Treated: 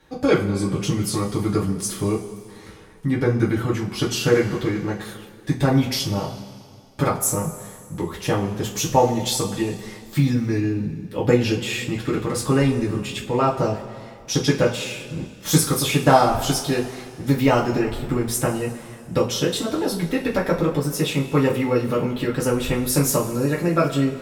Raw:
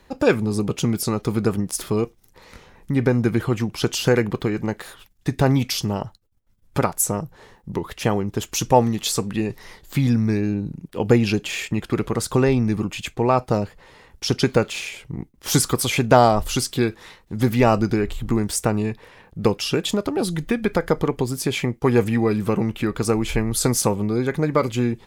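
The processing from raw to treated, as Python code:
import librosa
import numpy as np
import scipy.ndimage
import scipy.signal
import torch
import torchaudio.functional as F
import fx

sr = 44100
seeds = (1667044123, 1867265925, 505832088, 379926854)

y = fx.speed_glide(x, sr, from_pct=94, to_pct=113)
y = fx.rev_double_slope(y, sr, seeds[0], early_s=0.25, late_s=2.2, knee_db=-19, drr_db=-5.0)
y = y * 10.0 ** (-6.0 / 20.0)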